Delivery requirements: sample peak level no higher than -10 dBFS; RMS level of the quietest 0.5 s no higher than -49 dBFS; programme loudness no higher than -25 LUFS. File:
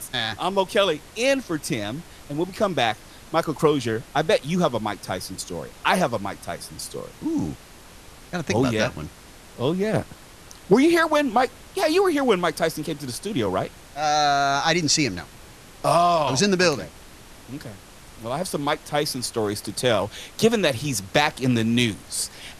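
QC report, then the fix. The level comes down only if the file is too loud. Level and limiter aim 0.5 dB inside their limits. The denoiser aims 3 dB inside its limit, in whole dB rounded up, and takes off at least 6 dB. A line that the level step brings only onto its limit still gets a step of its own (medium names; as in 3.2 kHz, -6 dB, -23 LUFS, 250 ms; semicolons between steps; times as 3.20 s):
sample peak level -5.0 dBFS: fail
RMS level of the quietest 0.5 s -45 dBFS: fail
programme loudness -23.0 LUFS: fail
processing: noise reduction 6 dB, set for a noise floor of -45 dBFS; trim -2.5 dB; peak limiter -10.5 dBFS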